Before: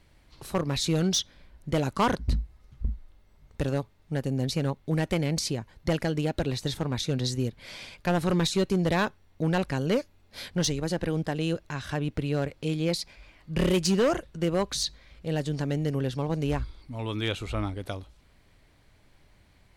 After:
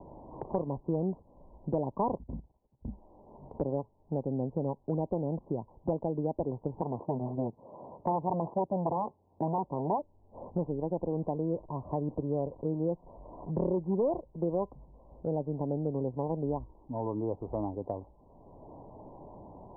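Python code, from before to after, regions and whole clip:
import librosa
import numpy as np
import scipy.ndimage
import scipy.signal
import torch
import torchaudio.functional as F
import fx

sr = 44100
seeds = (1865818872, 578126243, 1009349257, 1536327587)

y = fx.chain(x, sr, fx.level_steps(step_db=13),
    fx.band_widen(depth_pct=100), at=(2.23, 2.88))
y = fx.chain(y, sr, fx.self_delay(depth_ms=0.61),
    fx.highpass(hz=100.0, slope=12), at=(6.81, 9.99))
y = fx.chain(y, sr, fx.zero_step(step_db=-42.0),
    fx.notch(hz=820.0, q=15.0), at=(11.19, 13.51))
y = scipy.signal.sosfilt(scipy.signal.butter(16, 1000.0, 'lowpass', fs=sr, output='sos'), y)
y = fx.low_shelf(y, sr, hz=210.0, db=-11.5)
y = fx.band_squash(y, sr, depth_pct=70)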